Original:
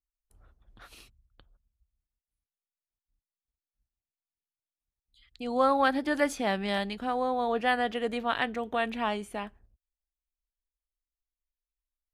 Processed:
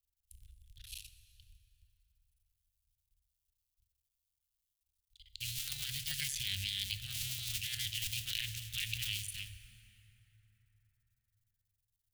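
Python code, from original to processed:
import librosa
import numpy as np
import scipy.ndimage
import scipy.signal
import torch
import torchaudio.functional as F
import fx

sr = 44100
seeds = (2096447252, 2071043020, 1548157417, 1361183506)

y = fx.cycle_switch(x, sr, every=2, mode='muted')
y = scipy.signal.sosfilt(scipy.signal.ellip(3, 1.0, 50, [100.0, 2900.0], 'bandstop', fs=sr, output='sos'), y)
y = fx.high_shelf(y, sr, hz=6700.0, db=7.0)
y = fx.hum_notches(y, sr, base_hz=50, count=2)
y = fx.over_compress(y, sr, threshold_db=-43.0, ratio=-1.0)
y = fx.rev_plate(y, sr, seeds[0], rt60_s=4.6, hf_ratio=0.45, predelay_ms=0, drr_db=9.5)
y = F.gain(torch.from_numpy(y), 5.5).numpy()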